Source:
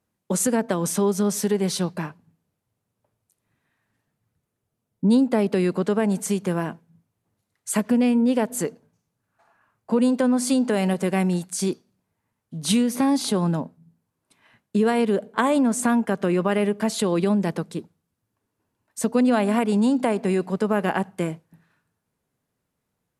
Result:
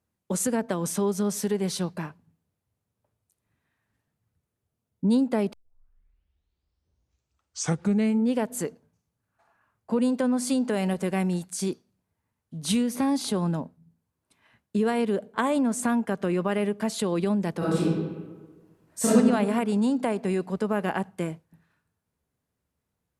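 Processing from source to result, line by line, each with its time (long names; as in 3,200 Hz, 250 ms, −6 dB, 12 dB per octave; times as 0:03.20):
0:05.53: tape start 2.82 s
0:17.58–0:19.11: thrown reverb, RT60 1.4 s, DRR −12 dB
whole clip: parametric band 69 Hz +11 dB 0.67 octaves; level −4.5 dB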